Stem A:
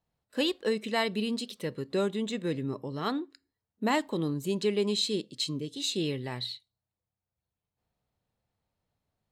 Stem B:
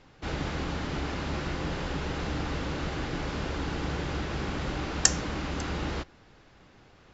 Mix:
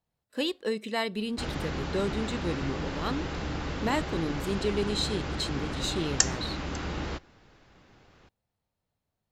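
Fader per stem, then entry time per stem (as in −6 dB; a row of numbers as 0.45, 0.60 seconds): −1.5, −1.5 decibels; 0.00, 1.15 seconds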